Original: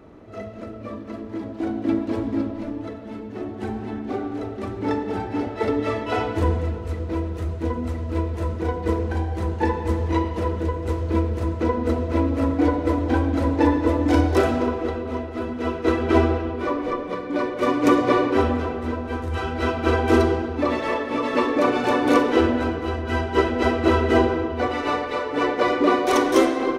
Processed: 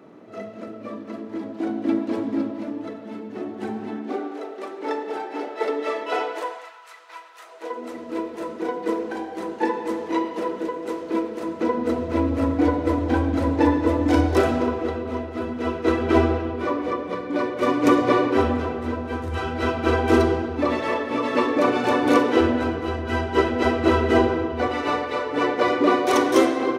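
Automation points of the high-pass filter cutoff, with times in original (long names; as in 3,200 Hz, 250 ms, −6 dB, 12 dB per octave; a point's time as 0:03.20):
high-pass filter 24 dB per octave
0:03.87 150 Hz
0:04.39 360 Hz
0:06.22 360 Hz
0:06.76 960 Hz
0:07.36 960 Hz
0:07.98 230 Hz
0:11.38 230 Hz
0:12.32 75 Hz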